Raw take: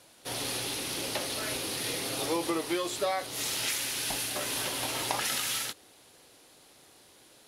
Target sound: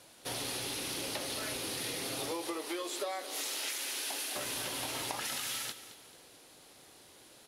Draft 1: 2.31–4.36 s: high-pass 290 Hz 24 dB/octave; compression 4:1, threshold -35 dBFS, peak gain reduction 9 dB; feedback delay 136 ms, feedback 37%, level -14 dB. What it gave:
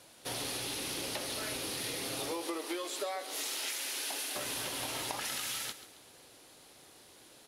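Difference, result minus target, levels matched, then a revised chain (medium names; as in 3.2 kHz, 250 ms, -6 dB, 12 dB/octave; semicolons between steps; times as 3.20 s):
echo 83 ms early
2.31–4.36 s: high-pass 290 Hz 24 dB/octave; compression 4:1, threshold -35 dBFS, peak gain reduction 9 dB; feedback delay 219 ms, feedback 37%, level -14 dB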